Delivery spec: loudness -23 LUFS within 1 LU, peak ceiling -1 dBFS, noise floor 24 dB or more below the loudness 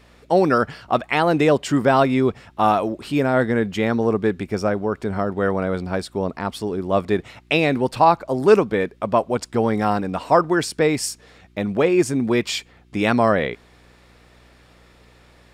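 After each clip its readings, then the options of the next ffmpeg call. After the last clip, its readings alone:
hum 60 Hz; highest harmonic 360 Hz; hum level -43 dBFS; loudness -20.5 LUFS; peak level -1.5 dBFS; loudness target -23.0 LUFS
-> -af "bandreject=f=60:t=h:w=4,bandreject=f=120:t=h:w=4,bandreject=f=180:t=h:w=4,bandreject=f=240:t=h:w=4,bandreject=f=300:t=h:w=4,bandreject=f=360:t=h:w=4"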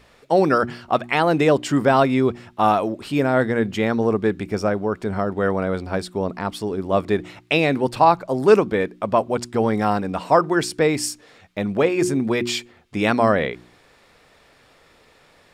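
hum not found; loudness -20.5 LUFS; peak level -2.0 dBFS; loudness target -23.0 LUFS
-> -af "volume=0.75"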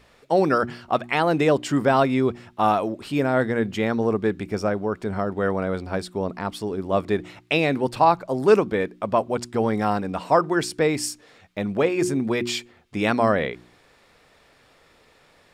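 loudness -23.0 LUFS; peak level -4.5 dBFS; noise floor -57 dBFS

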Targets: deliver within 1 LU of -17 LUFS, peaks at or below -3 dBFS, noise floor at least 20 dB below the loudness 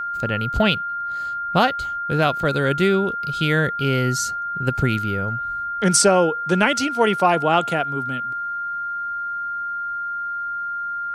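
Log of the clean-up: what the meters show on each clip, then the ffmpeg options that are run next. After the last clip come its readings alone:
steady tone 1.4 kHz; tone level -24 dBFS; loudness -21.0 LUFS; peak level -3.5 dBFS; loudness target -17.0 LUFS
-> -af "bandreject=f=1400:w=30"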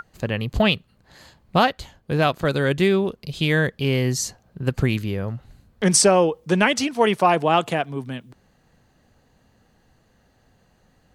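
steady tone not found; loudness -21.0 LUFS; peak level -3.0 dBFS; loudness target -17.0 LUFS
-> -af "volume=1.58,alimiter=limit=0.708:level=0:latency=1"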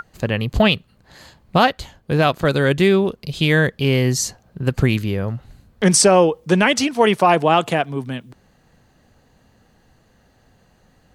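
loudness -17.5 LUFS; peak level -3.0 dBFS; noise floor -58 dBFS

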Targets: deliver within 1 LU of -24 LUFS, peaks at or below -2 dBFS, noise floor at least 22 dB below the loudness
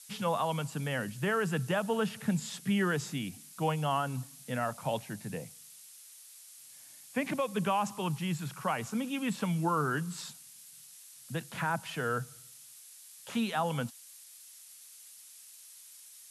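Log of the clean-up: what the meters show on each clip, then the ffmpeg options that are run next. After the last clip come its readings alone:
noise floor -53 dBFS; noise floor target -56 dBFS; loudness -33.5 LUFS; peak level -20.0 dBFS; loudness target -24.0 LUFS
-> -af "afftdn=nr=6:nf=-53"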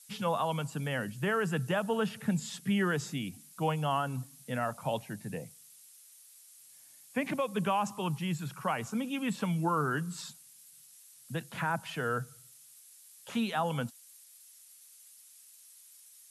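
noise floor -57 dBFS; loudness -33.5 LUFS; peak level -20.5 dBFS; loudness target -24.0 LUFS
-> -af "volume=2.99"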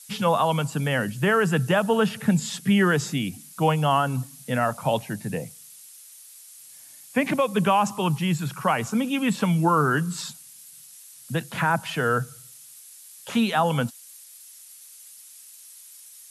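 loudness -24.0 LUFS; peak level -11.0 dBFS; noise floor -47 dBFS

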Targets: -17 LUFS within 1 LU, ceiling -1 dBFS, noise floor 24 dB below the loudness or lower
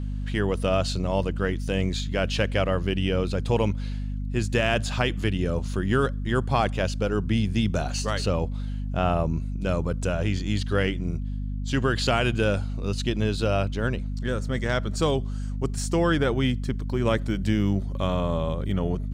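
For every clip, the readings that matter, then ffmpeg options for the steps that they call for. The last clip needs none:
hum 50 Hz; highest harmonic 250 Hz; hum level -27 dBFS; loudness -26.0 LUFS; peak level -9.0 dBFS; loudness target -17.0 LUFS
-> -af "bandreject=f=50:t=h:w=4,bandreject=f=100:t=h:w=4,bandreject=f=150:t=h:w=4,bandreject=f=200:t=h:w=4,bandreject=f=250:t=h:w=4"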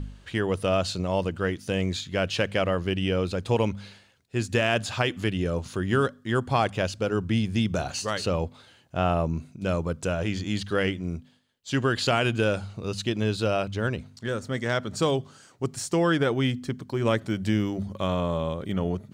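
hum not found; loudness -27.0 LUFS; peak level -10.0 dBFS; loudness target -17.0 LUFS
-> -af "volume=3.16,alimiter=limit=0.891:level=0:latency=1"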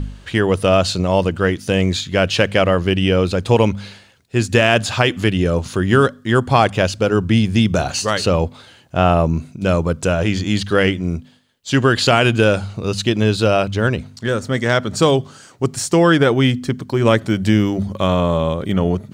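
loudness -17.0 LUFS; peak level -1.0 dBFS; noise floor -47 dBFS

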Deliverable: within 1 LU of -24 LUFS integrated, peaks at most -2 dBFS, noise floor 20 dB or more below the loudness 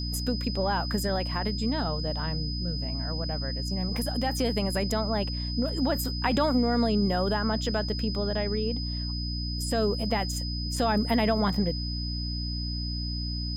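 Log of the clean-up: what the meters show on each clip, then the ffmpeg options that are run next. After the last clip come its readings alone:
hum 60 Hz; highest harmonic 300 Hz; hum level -30 dBFS; steady tone 5 kHz; tone level -35 dBFS; loudness -28.5 LUFS; peak level -13.0 dBFS; loudness target -24.0 LUFS
-> -af "bandreject=f=60:t=h:w=4,bandreject=f=120:t=h:w=4,bandreject=f=180:t=h:w=4,bandreject=f=240:t=h:w=4,bandreject=f=300:t=h:w=4"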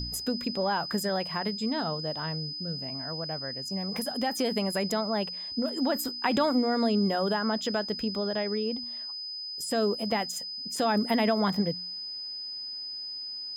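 hum not found; steady tone 5 kHz; tone level -35 dBFS
-> -af "bandreject=f=5000:w=30"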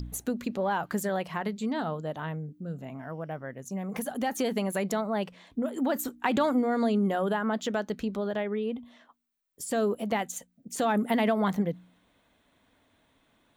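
steady tone not found; loudness -30.0 LUFS; peak level -13.0 dBFS; loudness target -24.0 LUFS
-> -af "volume=2"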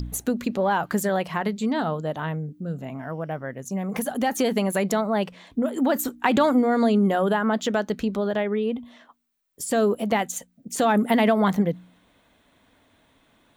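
loudness -24.0 LUFS; peak level -7.0 dBFS; noise floor -63 dBFS

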